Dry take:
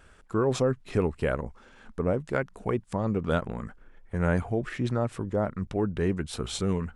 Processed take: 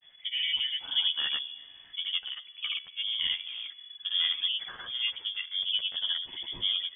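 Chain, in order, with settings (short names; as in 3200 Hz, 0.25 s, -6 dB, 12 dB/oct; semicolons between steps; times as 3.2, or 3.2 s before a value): grains, pitch spread up and down by 0 st; resonator 71 Hz, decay 1.7 s, harmonics all, mix 50%; chorus voices 6, 0.41 Hz, delay 11 ms, depth 1.5 ms; inverted band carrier 3400 Hz; gain +4 dB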